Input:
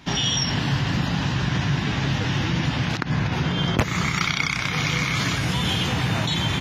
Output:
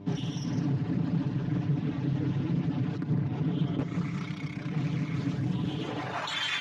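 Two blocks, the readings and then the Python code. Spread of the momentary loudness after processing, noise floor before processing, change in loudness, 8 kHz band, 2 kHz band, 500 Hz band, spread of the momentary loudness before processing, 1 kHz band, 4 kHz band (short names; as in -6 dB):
4 LU, -27 dBFS, -8.0 dB, under -15 dB, -14.5 dB, -7.5 dB, 2 LU, -12.0 dB, -14.0 dB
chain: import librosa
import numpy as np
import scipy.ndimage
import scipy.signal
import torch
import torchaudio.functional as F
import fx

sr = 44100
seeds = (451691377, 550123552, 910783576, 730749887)

y = fx.low_shelf(x, sr, hz=190.0, db=4.0)
y = fx.dereverb_blind(y, sr, rt60_s=1.7)
y = 10.0 ** (-20.0 / 20.0) * np.tanh(y / 10.0 ** (-20.0 / 20.0))
y = fx.dmg_buzz(y, sr, base_hz=100.0, harmonics=12, level_db=-39.0, tilt_db=-6, odd_only=False)
y = y + 0.6 * np.pad(y, (int(6.9 * sr / 1000.0), 0))[:len(y)]
y = y + 10.0 ** (-7.5 / 20.0) * np.pad(y, (int(154 * sr / 1000.0), 0))[:len(y)]
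y = fx.filter_sweep_bandpass(y, sr, from_hz=240.0, to_hz=1800.0, start_s=5.69, end_s=6.45, q=1.4)
y = fx.high_shelf(y, sr, hz=2800.0, db=11.0)
y = fx.doppler_dist(y, sr, depth_ms=0.24)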